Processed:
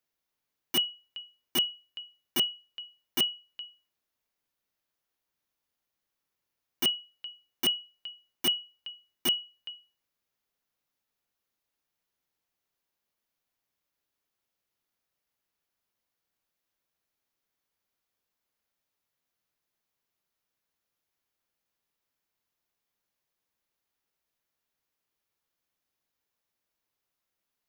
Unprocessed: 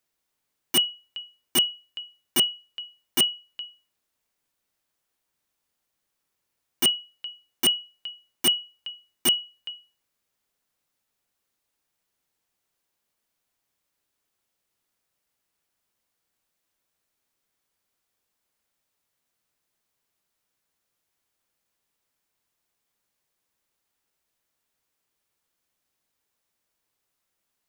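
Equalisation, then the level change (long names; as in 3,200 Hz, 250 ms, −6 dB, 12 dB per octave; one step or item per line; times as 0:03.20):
parametric band 8,400 Hz −7.5 dB 0.42 octaves
−5.0 dB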